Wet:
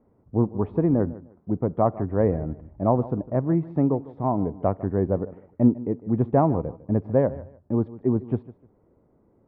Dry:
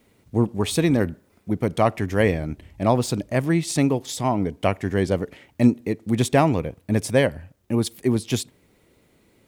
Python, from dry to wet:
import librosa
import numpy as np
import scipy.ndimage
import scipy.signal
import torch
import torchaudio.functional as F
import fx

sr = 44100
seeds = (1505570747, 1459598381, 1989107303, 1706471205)

y = scipy.signal.sosfilt(scipy.signal.butter(4, 1100.0, 'lowpass', fs=sr, output='sos'), x)
y = fx.echo_feedback(y, sr, ms=152, feedback_pct=24, wet_db=-18.0)
y = y * 10.0 ** (-1.5 / 20.0)